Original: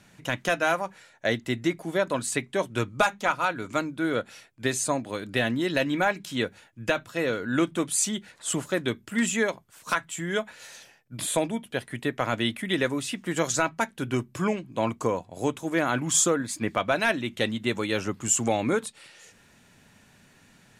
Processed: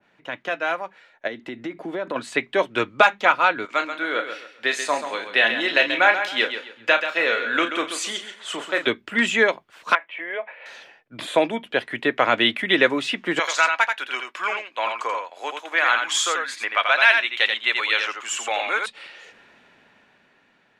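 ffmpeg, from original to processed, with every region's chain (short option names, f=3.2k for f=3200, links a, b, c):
-filter_complex "[0:a]asettb=1/sr,asplit=3[a][b][c];[a]atrim=end=1.274[d];[b]atrim=start=1.27:end=2.16,asetpts=PTS-STARTPTS,afade=t=in:d=0.004:c=qsin,afade=t=out:st=0.886:d=0.004:c=qsin,equalizer=f=250:t=o:w=1.5:g=6,acompressor=threshold=-27dB:ratio=10:attack=3.2:release=140:knee=1:detection=peak[e];[c]atrim=start=2.156[f];[d][e]acrossfade=d=0.004:c1=hsin:c2=qsin[g];[g][f]acrossfade=d=0.004:c1=qsin:c2=hsin,asettb=1/sr,asplit=3[h][i][j];[h]atrim=end=3.654[k];[i]atrim=start=3.65:end=8.87,asetpts=PTS-STARTPTS,afade=t=in:d=0.004:c=qsin,afade=t=out:st=5.216:d=0.004:c=qsin,highpass=f=880:p=1,asplit=2[l][m];[m]adelay=35,volume=-8.5dB[n];[l][n]amix=inputs=2:normalize=0,atrim=end_sample=230202,aecho=1:1:134|268|402:0.335|0.1|0.0301,atrim=end_sample=230202[o];[j]atrim=start=8.866[p];[k][o]acrossfade=d=0.004:c1=hsin:c2=qsin[q];[q][p]acrossfade=d=0.004:c1=qsin:c2=hsin,asettb=1/sr,asplit=3[r][s][t];[r]atrim=end=9.954[u];[s]atrim=start=9.95:end=10.66,asetpts=PTS-STARTPTS,afade=t=in:d=0.004:c=qsin,afade=t=out:st=0.706:d=0.004:c=qsin,agate=range=-33dB:threshold=-49dB:ratio=3:release=100:detection=peak,acompressor=threshold=-28dB:ratio=10:attack=3.2:release=140:knee=1:detection=peak,highpass=f=360:w=0.5412,highpass=f=360:w=1.3066,equalizer=f=370:t=q:w=4:g=-7,equalizer=f=590:t=q:w=4:g=5,equalizer=f=1.4k:t=q:w=4:g=-8,equalizer=f=2.3k:t=q:w=4:g=5,lowpass=f=2.5k:w=0.5412,lowpass=f=2.5k:w=1.3066[v];[t]atrim=start=10.656[w];[u][v]acrossfade=d=0.004:c1=hsin:c2=qsin[x];[x][w]acrossfade=d=0.004:c1=qsin:c2=hsin,asettb=1/sr,asplit=3[y][z][aa];[y]atrim=end=13.394[ab];[z]atrim=start=13.39:end=18.86,asetpts=PTS-STARTPTS,afade=t=in:d=0.004:c=qsin,afade=t=out:st=5.466:d=0.004:c=qsin,highpass=1.1k,aecho=1:1:85:0.531,atrim=end_sample=241227[ac];[aa]atrim=start=18.856[ad];[ab][ac]acrossfade=d=0.004:c1=hsin:c2=qsin[ae];[ae][ad]acrossfade=d=0.004:c1=qsin:c2=hsin,acrossover=split=280 3700:gain=0.141 1 0.0631[af][ag][ah];[af][ag][ah]amix=inputs=3:normalize=0,dynaudnorm=f=280:g=11:m=11.5dB,adynamicequalizer=threshold=0.0398:dfrequency=1800:dqfactor=0.7:tfrequency=1800:tqfactor=0.7:attack=5:release=100:ratio=0.375:range=3:mode=boostabove:tftype=highshelf,volume=-1.5dB"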